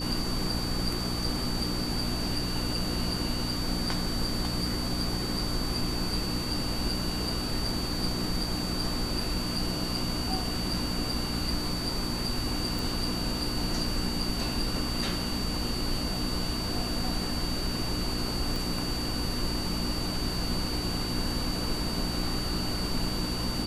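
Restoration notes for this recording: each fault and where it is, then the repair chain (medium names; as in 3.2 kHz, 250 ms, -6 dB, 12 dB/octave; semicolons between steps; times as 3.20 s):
hum 60 Hz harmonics 5 -35 dBFS
whine 4.6 kHz -35 dBFS
12.79 s: pop
18.56 s: pop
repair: de-click; band-stop 4.6 kHz, Q 30; de-hum 60 Hz, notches 5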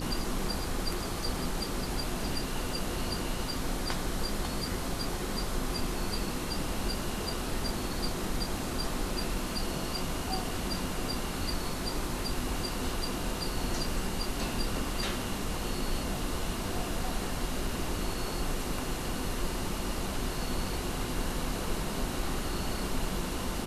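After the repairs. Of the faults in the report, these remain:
18.56 s: pop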